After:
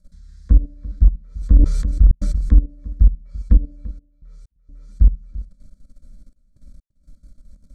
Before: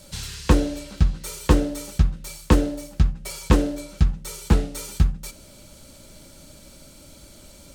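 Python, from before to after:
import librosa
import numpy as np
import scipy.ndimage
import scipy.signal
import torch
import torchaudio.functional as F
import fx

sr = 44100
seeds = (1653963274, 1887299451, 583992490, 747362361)

p1 = fx.riaa(x, sr, side='playback')
p2 = fx.hum_notches(p1, sr, base_hz=60, count=2)
p3 = fx.env_lowpass_down(p2, sr, base_hz=610.0, full_db=-1.5)
p4 = fx.peak_eq(p3, sr, hz=710.0, db=-13.0, octaves=2.5)
p5 = fx.level_steps(p4, sr, step_db=17)
p6 = fx.fixed_phaser(p5, sr, hz=560.0, stages=8)
p7 = fx.step_gate(p6, sr, bpm=64, pattern='xxxxxxx.x.', floor_db=-60.0, edge_ms=4.5)
p8 = p7 + fx.echo_single(p7, sr, ms=340, db=-17.5, dry=0)
p9 = fx.sustainer(p8, sr, db_per_s=36.0, at=(1.23, 2.6))
y = F.gain(torch.from_numpy(p9), -4.0).numpy()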